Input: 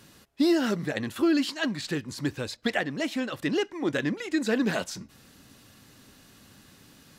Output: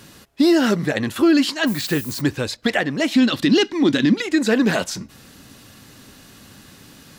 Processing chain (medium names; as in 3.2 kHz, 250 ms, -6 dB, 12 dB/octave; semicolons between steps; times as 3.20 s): 1.66–2.20 s: added noise violet -43 dBFS; 3.14–4.22 s: ten-band graphic EQ 250 Hz +11 dB, 500 Hz -4 dB, 4 kHz +12 dB; loudness maximiser +15.5 dB; trim -6.5 dB